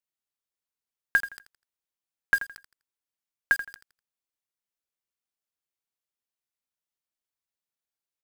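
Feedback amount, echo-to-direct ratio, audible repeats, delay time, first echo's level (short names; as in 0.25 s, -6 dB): 26%, -12.5 dB, 2, 83 ms, -13.0 dB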